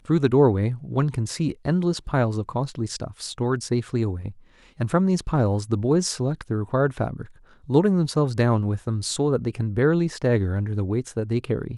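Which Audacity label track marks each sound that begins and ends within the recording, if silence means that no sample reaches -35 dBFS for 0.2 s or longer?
4.800000	7.250000	sound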